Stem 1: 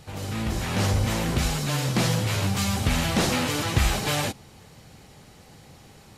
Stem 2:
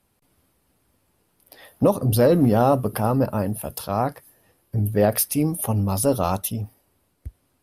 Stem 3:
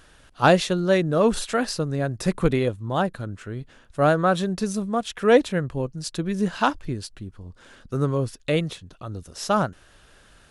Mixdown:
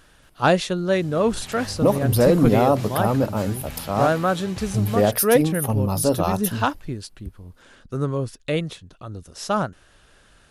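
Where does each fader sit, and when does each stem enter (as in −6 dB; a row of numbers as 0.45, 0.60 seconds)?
−13.5, 0.0, −1.0 decibels; 0.80, 0.00, 0.00 seconds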